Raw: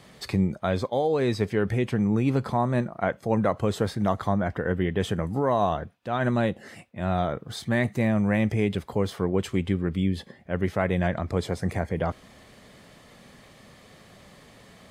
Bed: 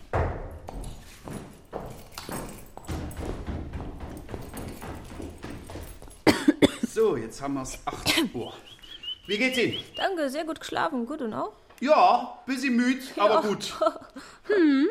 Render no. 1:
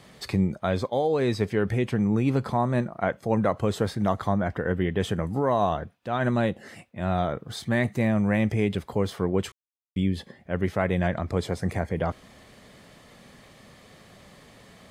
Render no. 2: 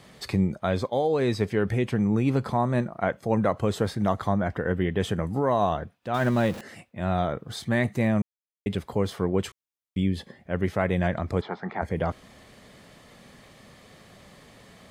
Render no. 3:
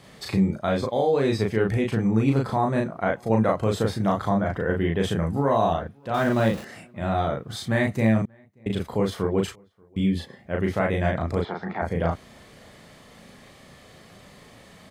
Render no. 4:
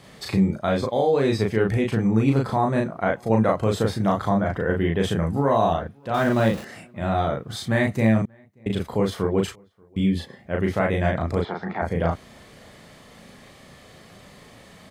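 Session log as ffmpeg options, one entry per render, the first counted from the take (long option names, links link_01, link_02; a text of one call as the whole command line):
ffmpeg -i in.wav -filter_complex "[0:a]asplit=3[link_01][link_02][link_03];[link_01]atrim=end=9.52,asetpts=PTS-STARTPTS,afade=type=out:start_time=9.516:duration=0.004:curve=hsin[link_04];[link_02]atrim=start=9.52:end=9.96,asetpts=PTS-STARTPTS,volume=0[link_05];[link_03]atrim=start=9.96,asetpts=PTS-STARTPTS,afade=type=in:duration=0.004:curve=hsin[link_06];[link_04][link_05][link_06]concat=n=3:v=0:a=1" out.wav
ffmpeg -i in.wav -filter_complex "[0:a]asettb=1/sr,asplit=3[link_01][link_02][link_03];[link_01]atrim=end=6.144[link_04];[link_02]atrim=start=6.14:end=6.61,asetpts=PTS-STARTPTS,afade=type=in:duration=0.004:curve=qsin,afade=type=out:start_time=0.466:duration=0.004:curve=qsin,aeval=exprs='val(0)+0.5*0.0188*sgn(val(0))':channel_layout=same[link_05];[link_03]atrim=start=6.606[link_06];[link_04][link_05]acrossfade=duration=0.004:curve1=hsin:curve2=qsin[link_07];[link_07][link_06]acrossfade=duration=0.004:curve1=qsin:curve2=hsin,asplit=3[link_08][link_09][link_10];[link_08]afade=type=out:start_time=11.4:duration=0.02[link_11];[link_09]highpass=frequency=200:width=0.5412,highpass=frequency=200:width=1.3066,equalizer=frequency=280:width_type=q:width=4:gain=-8,equalizer=frequency=520:width_type=q:width=4:gain=-10,equalizer=frequency=860:width_type=q:width=4:gain=10,equalizer=frequency=1300:width_type=q:width=4:gain=7,equalizer=frequency=2600:width_type=q:width=4:gain=-8,lowpass=frequency=3400:width=0.5412,lowpass=frequency=3400:width=1.3066,afade=type=in:start_time=11.4:duration=0.02,afade=type=out:start_time=11.81:duration=0.02[link_12];[link_10]afade=type=in:start_time=11.81:duration=0.02[link_13];[link_11][link_12][link_13]amix=inputs=3:normalize=0,asplit=3[link_14][link_15][link_16];[link_14]atrim=end=8.22,asetpts=PTS-STARTPTS,afade=type=out:start_time=8.216:duration=0.004:curve=hsin[link_17];[link_15]atrim=start=8.22:end=8.66,asetpts=PTS-STARTPTS,volume=0[link_18];[link_16]atrim=start=8.66,asetpts=PTS-STARTPTS,afade=type=in:duration=0.004:curve=hsin[link_19];[link_17][link_18][link_19]concat=n=3:v=0:a=1" out.wav
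ffmpeg -i in.wav -filter_complex "[0:a]asplit=2[link_01][link_02];[link_02]adelay=36,volume=-2dB[link_03];[link_01][link_03]amix=inputs=2:normalize=0,asplit=2[link_04][link_05];[link_05]adelay=583.1,volume=-30dB,highshelf=frequency=4000:gain=-13.1[link_06];[link_04][link_06]amix=inputs=2:normalize=0" out.wav
ffmpeg -i in.wav -af "volume=1.5dB" out.wav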